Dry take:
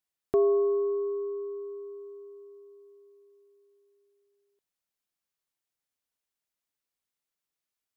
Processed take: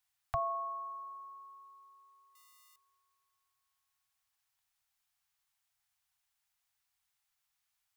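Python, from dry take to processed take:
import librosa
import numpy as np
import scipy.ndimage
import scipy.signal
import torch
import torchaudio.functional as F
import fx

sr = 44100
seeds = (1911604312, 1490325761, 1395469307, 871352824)

y = fx.crossing_spikes(x, sr, level_db=-53.0, at=(2.35, 2.76))
y = scipy.signal.sosfilt(scipy.signal.cheby1(4, 1.0, [130.0, 730.0], 'bandstop', fs=sr, output='sos'), y)
y = y * librosa.db_to_amplitude(6.5)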